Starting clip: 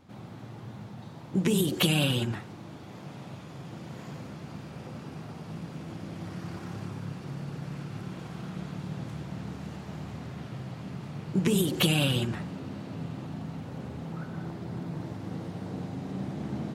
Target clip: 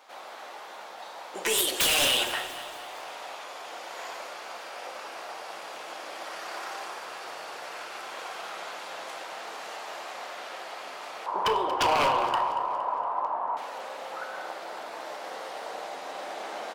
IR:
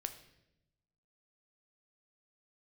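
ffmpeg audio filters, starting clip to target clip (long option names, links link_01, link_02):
-filter_complex "[0:a]highpass=frequency=580:width=0.5412,highpass=frequency=580:width=1.3066,acontrast=32,asettb=1/sr,asplit=3[link_01][link_02][link_03];[link_01]atrim=end=11.264[link_04];[link_02]atrim=start=11.26:end=13.57,asetpts=PTS-STARTPTS,afade=type=in:duration=0.004:curve=qsin,afade=type=out:start_time=2.306:duration=0.004:curve=qsin,lowpass=frequency=1000:width_type=q:width=10[link_05];[link_03]atrim=start=13.566[link_06];[link_04][link_05]acrossfade=duration=0.004:curve1=hsin:curve2=qsin[link_07];[link_07][link_06]acrossfade=duration=0.004:curve1=qsin:curve2=hsin,aeval=exprs='0.0708*(abs(mod(val(0)/0.0708+3,4)-2)-1)':channel_layout=same,aecho=1:1:232|464|696|928|1160:0.2|0.102|0.0519|0.0265|0.0135[link_08];[1:a]atrim=start_sample=2205[link_09];[link_08][link_09]afir=irnorm=-1:irlink=0,volume=7dB"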